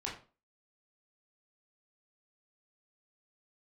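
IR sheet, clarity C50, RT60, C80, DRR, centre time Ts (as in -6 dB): 7.5 dB, 0.35 s, 12.0 dB, -4.5 dB, 29 ms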